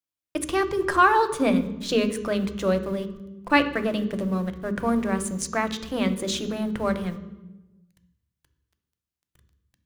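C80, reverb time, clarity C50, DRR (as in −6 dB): 14.5 dB, 1.1 s, 12.5 dB, 9.0 dB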